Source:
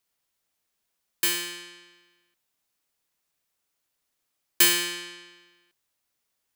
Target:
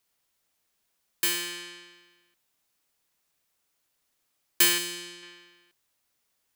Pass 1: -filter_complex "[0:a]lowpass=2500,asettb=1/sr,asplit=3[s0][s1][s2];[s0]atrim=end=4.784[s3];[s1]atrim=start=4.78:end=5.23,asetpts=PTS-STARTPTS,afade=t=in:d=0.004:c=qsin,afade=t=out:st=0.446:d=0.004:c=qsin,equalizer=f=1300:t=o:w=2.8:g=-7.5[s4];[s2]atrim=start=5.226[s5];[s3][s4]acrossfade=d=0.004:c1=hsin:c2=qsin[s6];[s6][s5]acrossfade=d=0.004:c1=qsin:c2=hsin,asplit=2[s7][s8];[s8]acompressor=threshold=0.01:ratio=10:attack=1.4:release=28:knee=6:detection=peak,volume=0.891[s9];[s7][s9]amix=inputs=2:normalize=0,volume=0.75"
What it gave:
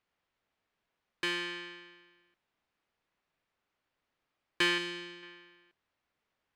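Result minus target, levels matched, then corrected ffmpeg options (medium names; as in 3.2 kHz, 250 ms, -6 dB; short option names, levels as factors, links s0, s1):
2 kHz band +7.0 dB
-filter_complex "[0:a]asettb=1/sr,asplit=3[s0][s1][s2];[s0]atrim=end=4.784[s3];[s1]atrim=start=4.78:end=5.23,asetpts=PTS-STARTPTS,afade=t=in:d=0.004:c=qsin,afade=t=out:st=0.446:d=0.004:c=qsin,equalizer=f=1300:t=o:w=2.8:g=-7.5[s4];[s2]atrim=start=5.226[s5];[s3][s4]acrossfade=d=0.004:c1=hsin:c2=qsin[s6];[s6][s5]acrossfade=d=0.004:c1=qsin:c2=hsin,asplit=2[s7][s8];[s8]acompressor=threshold=0.01:ratio=10:attack=1.4:release=28:knee=6:detection=peak,volume=0.891[s9];[s7][s9]amix=inputs=2:normalize=0,volume=0.75"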